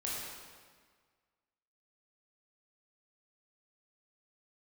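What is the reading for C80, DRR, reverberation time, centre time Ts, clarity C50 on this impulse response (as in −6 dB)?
0.5 dB, −6.0 dB, 1.6 s, 109 ms, −1.5 dB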